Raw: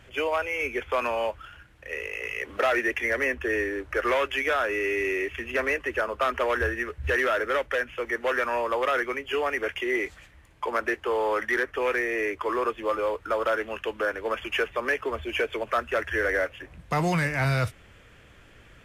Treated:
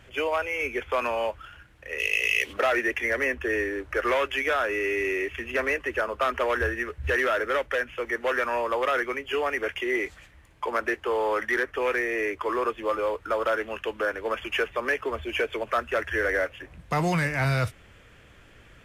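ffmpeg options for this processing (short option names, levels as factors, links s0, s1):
-filter_complex "[0:a]asplit=3[s0][s1][s2];[s0]afade=t=out:st=1.98:d=0.02[s3];[s1]highshelf=f=2100:t=q:w=1.5:g=12.5,afade=t=in:st=1.98:d=0.02,afade=t=out:st=2.52:d=0.02[s4];[s2]afade=t=in:st=2.52:d=0.02[s5];[s3][s4][s5]amix=inputs=3:normalize=0"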